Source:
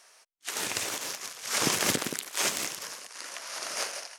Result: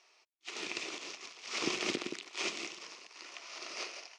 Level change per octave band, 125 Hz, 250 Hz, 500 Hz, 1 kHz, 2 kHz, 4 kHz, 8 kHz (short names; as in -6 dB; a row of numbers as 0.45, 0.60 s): -13.5, -4.5, -5.5, -9.5, -6.0, -7.0, -14.5 dB